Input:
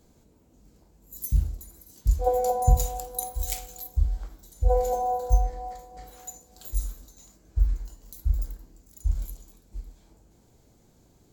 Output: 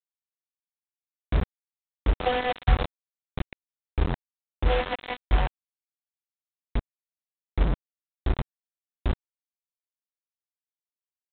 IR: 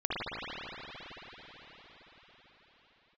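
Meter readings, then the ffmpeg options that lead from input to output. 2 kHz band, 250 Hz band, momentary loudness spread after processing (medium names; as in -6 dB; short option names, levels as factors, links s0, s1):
+18.5 dB, +10.0 dB, 12 LU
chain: -af "adynamicequalizer=threshold=0.0178:dfrequency=490:dqfactor=1:tfrequency=490:tqfactor=1:attack=5:release=100:ratio=0.375:range=1.5:mode=cutabove:tftype=bell,aresample=11025,acrusher=bits=3:mix=0:aa=0.000001,aresample=44100,volume=0.794" -ar 8000 -c:a adpcm_g726 -b:a 24k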